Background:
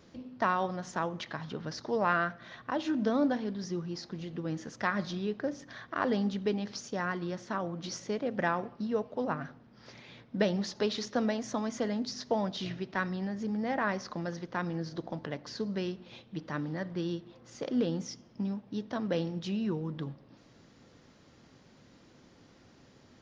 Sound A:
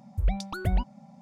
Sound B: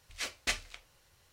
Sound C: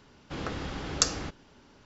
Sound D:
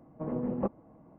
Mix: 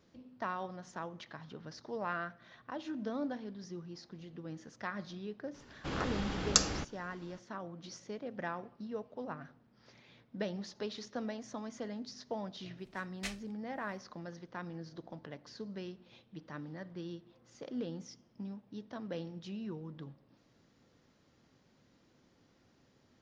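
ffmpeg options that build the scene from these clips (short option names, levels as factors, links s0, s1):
-filter_complex "[0:a]volume=0.335[s0];[2:a]aeval=exprs='val(0)*pow(10,-22*(0.5-0.5*cos(2*PI*1.8*n/s))/20)':c=same[s1];[3:a]atrim=end=1.85,asetpts=PTS-STARTPTS,volume=0.841,afade=t=in:d=0.004:c=hsin,afade=t=out:st=1.846:d=0.004:c=hsin,adelay=5540[s2];[s1]atrim=end=1.32,asetpts=PTS-STARTPTS,volume=0.447,afade=t=in:d=0.1,afade=t=out:st=1.22:d=0.1,adelay=12760[s3];[s0][s2][s3]amix=inputs=3:normalize=0"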